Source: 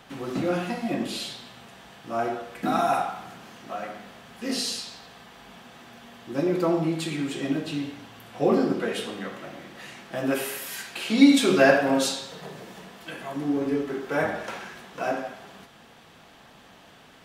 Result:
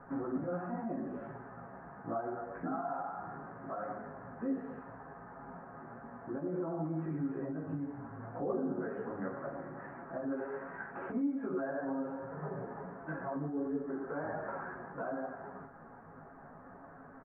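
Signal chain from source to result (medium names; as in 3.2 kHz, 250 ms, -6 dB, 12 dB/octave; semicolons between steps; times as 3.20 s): steep low-pass 1.6 kHz 48 dB/octave; comb 7.3 ms, depth 33%; compression 2.5:1, threshold -35 dBFS, peak gain reduction 17.5 dB; peak limiter -29 dBFS, peak gain reduction 11 dB; chorus voices 6, 0.98 Hz, delay 15 ms, depth 4.4 ms; trim +2.5 dB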